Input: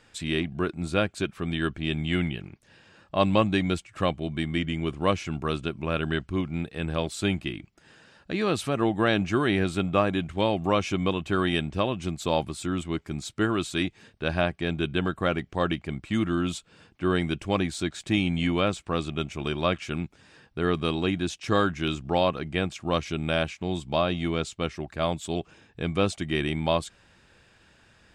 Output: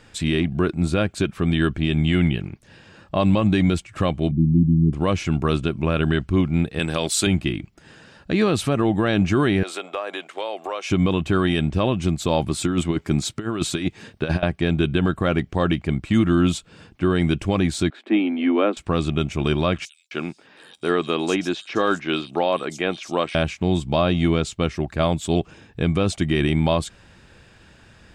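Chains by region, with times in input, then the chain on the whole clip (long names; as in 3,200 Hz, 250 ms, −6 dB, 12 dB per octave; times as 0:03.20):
0:04.31–0:04.93: inverse Chebyshev low-pass filter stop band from 590 Hz + dynamic equaliser 170 Hz, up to +6 dB, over −45 dBFS, Q 4.3
0:06.79–0:07.27: high-pass filter 280 Hz 6 dB per octave + high-shelf EQ 3,100 Hz +11.5 dB
0:09.63–0:10.90: high-pass filter 460 Hz 24 dB per octave + downward compressor 4 to 1, threshold −32 dBFS
0:12.51–0:14.43: high-pass filter 110 Hz 6 dB per octave + compressor whose output falls as the input rises −30 dBFS, ratio −0.5
0:17.90–0:18.77: Butterworth high-pass 230 Hz 72 dB per octave + high-frequency loss of the air 490 metres
0:19.85–0:23.35: high-pass filter 340 Hz + multiband delay without the direct sound highs, lows 260 ms, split 4,600 Hz
whole clip: low-shelf EQ 360 Hz +5.5 dB; brickwall limiter −14.5 dBFS; level +6 dB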